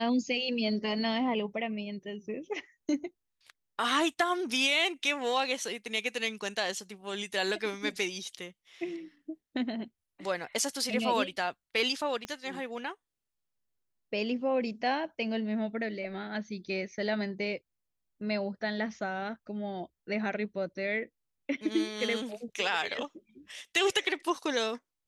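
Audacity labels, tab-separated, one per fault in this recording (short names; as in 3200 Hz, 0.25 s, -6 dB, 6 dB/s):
12.250000	12.250000	pop -22 dBFS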